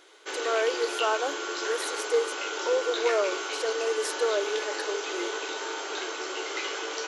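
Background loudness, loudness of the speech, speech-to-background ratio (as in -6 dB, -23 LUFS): -32.0 LUFS, -30.0 LUFS, 2.0 dB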